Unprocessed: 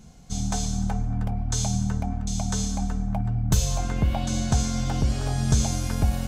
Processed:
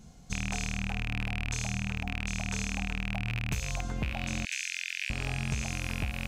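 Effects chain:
loose part that buzzes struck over −23 dBFS, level −12 dBFS
0:04.45–0:05.10: Butterworth high-pass 1,600 Hz 72 dB per octave
downward compressor, threshold −25 dBFS, peak gain reduction 10.5 dB
level −3.5 dB

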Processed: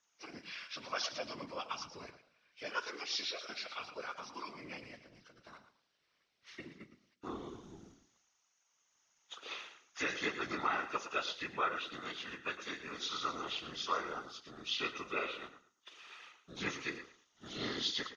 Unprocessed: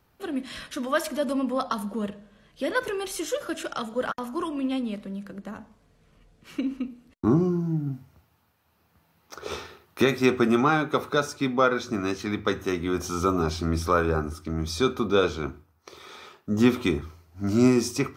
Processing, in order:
hearing-aid frequency compression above 1,300 Hz 1.5 to 1
first difference
in parallel at −9 dB: centre clipping without the shift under −56.5 dBFS
on the sum: band-pass filter 120–6,500 Hz
on a send: repeating echo 112 ms, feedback 20%, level −11.5 dB
on the sum: random phases in short frames
level +2 dB

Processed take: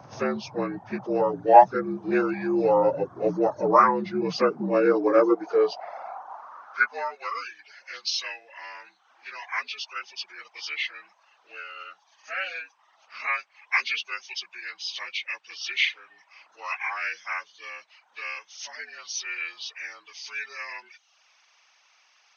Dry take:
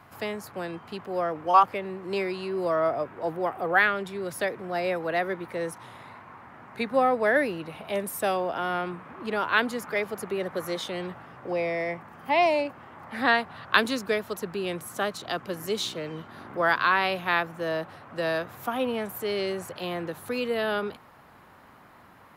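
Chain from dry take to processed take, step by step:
partials spread apart or drawn together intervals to 79%
high-pass filter sweep 93 Hz → 2,700 Hz, 0:03.80–0:07.53
reverb reduction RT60 0.63 s
level +6.5 dB

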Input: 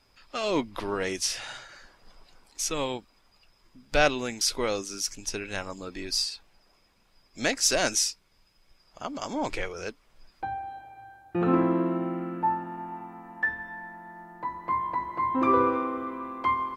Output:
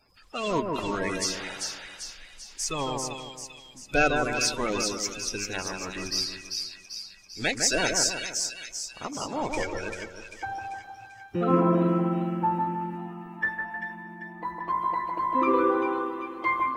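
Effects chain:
spectral magnitudes quantised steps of 30 dB
echo with a time of its own for lows and highs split 1,900 Hz, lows 155 ms, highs 392 ms, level −4 dB

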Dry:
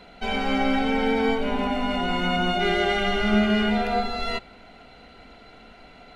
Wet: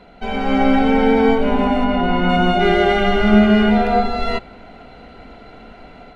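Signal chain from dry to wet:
high-shelf EQ 2,100 Hz −10.5 dB
automatic gain control gain up to 5.5 dB
0:01.84–0:02.29: high-frequency loss of the air 130 metres
level +4 dB

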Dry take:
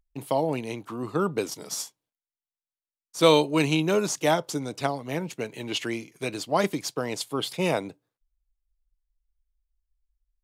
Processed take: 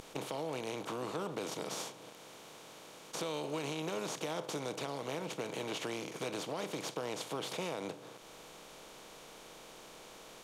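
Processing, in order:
compressor on every frequency bin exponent 0.4
brickwall limiter −10 dBFS, peak gain reduction 7.5 dB
downward compressor 2 to 1, threshold −42 dBFS, peak gain reduction 14 dB
level −4.5 dB

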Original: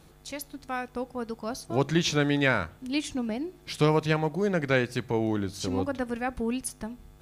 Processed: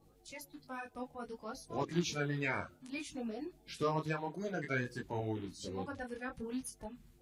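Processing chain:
spectral magnitudes quantised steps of 30 dB
micro pitch shift up and down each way 20 cents
level −7 dB

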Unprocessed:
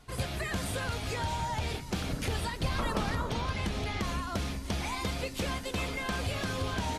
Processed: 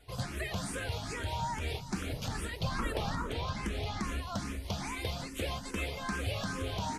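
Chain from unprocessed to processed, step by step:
frequency shifter mixed with the dry sound +2.4 Hz

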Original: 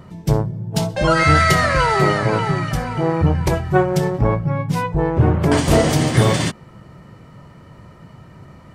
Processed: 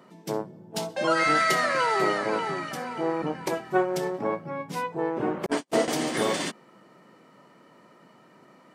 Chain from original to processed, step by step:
high-pass filter 230 Hz 24 dB per octave
0:05.46–0:05.88: noise gate −15 dBFS, range −52 dB
level −7 dB

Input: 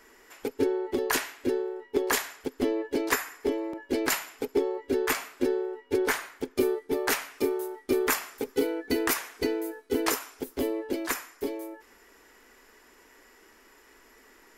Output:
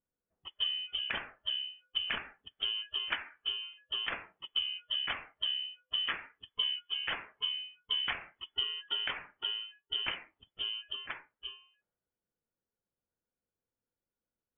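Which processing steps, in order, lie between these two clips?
voice inversion scrambler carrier 3,400 Hz
noise reduction from a noise print of the clip's start 12 dB
low-pass that shuts in the quiet parts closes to 340 Hz, open at −22.5 dBFS
level −7.5 dB

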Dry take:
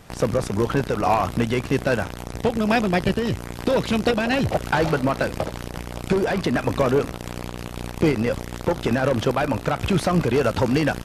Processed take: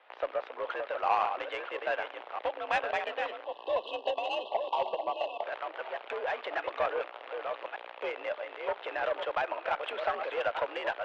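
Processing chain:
delay that plays each chunk backwards 597 ms, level −6 dB
time-frequency box erased 0:03.44–0:05.43, 1,100–2,500 Hz
in parallel at −2 dB: brickwall limiter −13.5 dBFS, peak gain reduction 6.5 dB
on the sum: single-sideband voice off tune +59 Hz 470–3,300 Hz
on a send at −23.5 dB: convolution reverb RT60 3.4 s, pre-delay 7 ms
on the sum: harmonic generator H 2 −44 dB, 3 −21 dB, 7 −34 dB, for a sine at −3.5 dBFS
level −9 dB

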